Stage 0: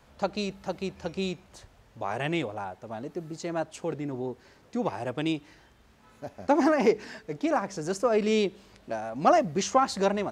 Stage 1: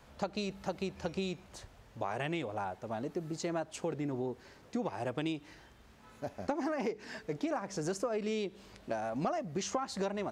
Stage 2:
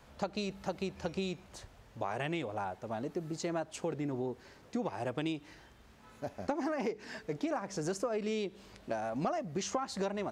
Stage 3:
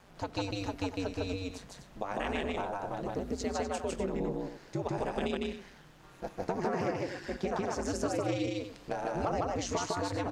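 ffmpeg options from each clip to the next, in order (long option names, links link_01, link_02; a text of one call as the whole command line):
ffmpeg -i in.wav -af "acompressor=threshold=-31dB:ratio=12" out.wav
ffmpeg -i in.wav -af anull out.wav
ffmpeg -i in.wav -af "aeval=exprs='val(0)*sin(2*PI*95*n/s)':channel_layout=same,aecho=1:1:154.5|247.8:0.891|0.316,volume=3dB" out.wav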